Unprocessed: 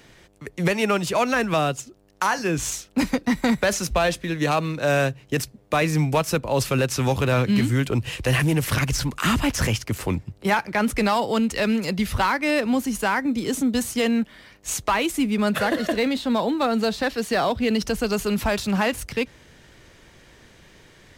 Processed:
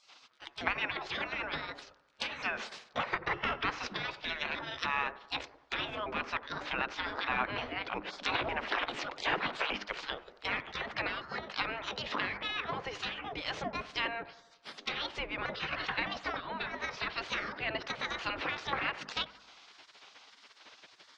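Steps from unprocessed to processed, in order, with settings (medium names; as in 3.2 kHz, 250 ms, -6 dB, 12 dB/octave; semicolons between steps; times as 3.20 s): pitch shift switched off and on +6 st, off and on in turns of 303 ms; low-pass that closes with the level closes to 1.5 kHz, closed at -18.5 dBFS; bass shelf 69 Hz +6.5 dB; hum notches 50/100/150/200/250/300 Hz; spectral gate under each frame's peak -20 dB weak; low-pass 5.1 kHz 24 dB/octave; bass shelf 140 Hz -7.5 dB; bucket-brigade echo 89 ms, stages 1024, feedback 56%, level -16.5 dB; trim +4 dB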